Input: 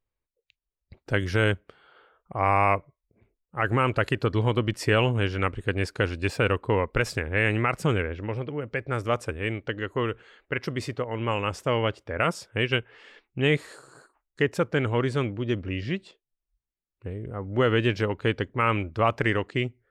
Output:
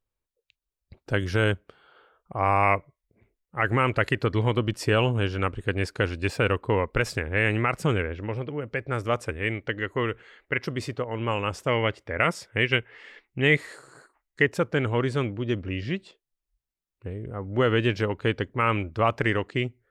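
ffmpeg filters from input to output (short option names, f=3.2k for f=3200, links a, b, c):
-af "asetnsamples=n=441:p=0,asendcmd='2.63 equalizer g 5.5;4.58 equalizer g -5.5;5.59 equalizer g 0.5;9.25 equalizer g 6.5;10.62 equalizer g -1.5;11.68 equalizer g 8.5;14.46 equalizer g 0',equalizer=f=2k:t=o:w=0.34:g=-3.5"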